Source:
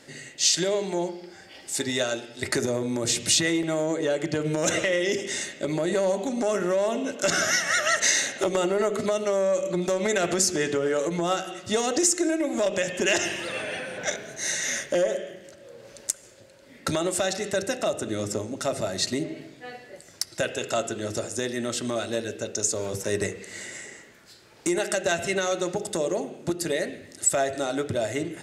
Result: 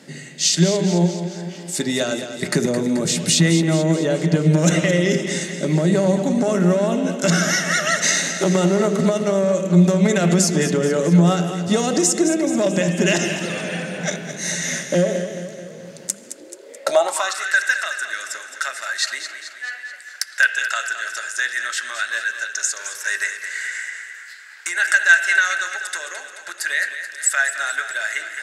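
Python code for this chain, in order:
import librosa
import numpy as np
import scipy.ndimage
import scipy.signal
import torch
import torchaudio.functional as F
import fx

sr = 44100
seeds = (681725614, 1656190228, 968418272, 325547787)

y = fx.echo_feedback(x, sr, ms=216, feedback_pct=57, wet_db=-10.0)
y = fx.filter_sweep_highpass(y, sr, from_hz=170.0, to_hz=1600.0, start_s=16.05, end_s=17.52, q=7.7)
y = y * librosa.db_to_amplitude(3.0)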